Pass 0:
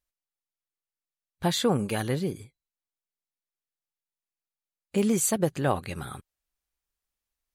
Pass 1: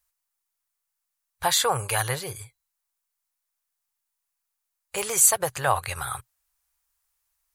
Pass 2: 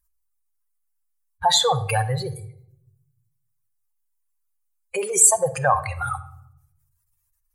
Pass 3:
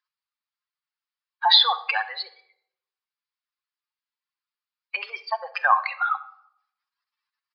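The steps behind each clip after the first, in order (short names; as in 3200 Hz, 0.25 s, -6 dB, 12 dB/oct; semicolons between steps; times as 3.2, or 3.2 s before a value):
EQ curve 120 Hz 0 dB, 220 Hz -28 dB, 450 Hz -5 dB, 970 Hz +8 dB, 3300 Hz +3 dB, 10000 Hz +11 dB; in parallel at -2.5 dB: limiter -16 dBFS, peak gain reduction 11.5 dB; on the sum: gain -2 dB
spectral contrast raised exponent 2.4; shoebox room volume 1900 m³, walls furnished, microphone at 0.89 m; gain +4 dB
HPF 980 Hz 24 dB/oct; downsampling 11025 Hz; gain +4.5 dB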